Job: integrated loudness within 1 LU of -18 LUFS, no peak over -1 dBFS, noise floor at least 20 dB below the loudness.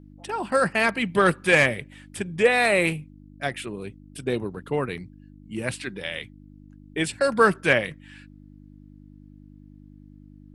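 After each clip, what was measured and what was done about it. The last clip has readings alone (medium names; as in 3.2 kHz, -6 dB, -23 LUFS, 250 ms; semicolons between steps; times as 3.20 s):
hum 50 Hz; highest harmonic 300 Hz; hum level -46 dBFS; loudness -23.5 LUFS; peak level -5.0 dBFS; loudness target -18.0 LUFS
-> de-hum 50 Hz, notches 6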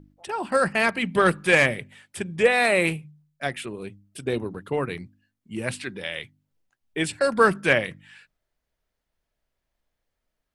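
hum not found; loudness -23.5 LUFS; peak level -5.5 dBFS; loudness target -18.0 LUFS
-> trim +5.5 dB; peak limiter -1 dBFS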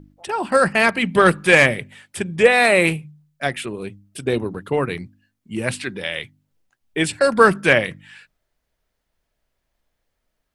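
loudness -18.0 LUFS; peak level -1.0 dBFS; noise floor -76 dBFS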